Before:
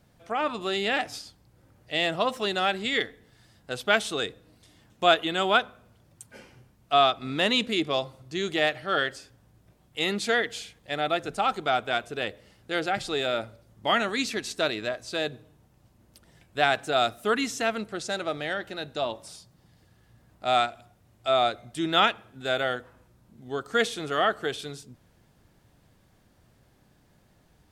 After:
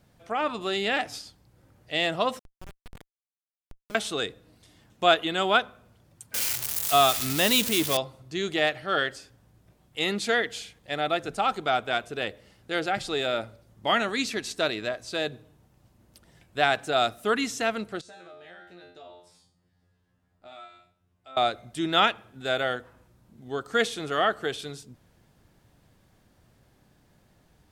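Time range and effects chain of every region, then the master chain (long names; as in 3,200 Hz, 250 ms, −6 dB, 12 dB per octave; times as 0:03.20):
0:02.39–0:03.95: high-pass filter 1,000 Hz + downward compressor 1.5 to 1, threshold −49 dBFS + comparator with hysteresis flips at −27.5 dBFS
0:06.34–0:07.97: spike at every zero crossing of −16.5 dBFS + parametric band 77 Hz +13.5 dB 0.97 octaves
0:18.01–0:21.37: high-shelf EQ 4,400 Hz −7 dB + tuned comb filter 88 Hz, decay 0.42 s, mix 100% + downward compressor 3 to 1, threshold −45 dBFS
whole clip: no processing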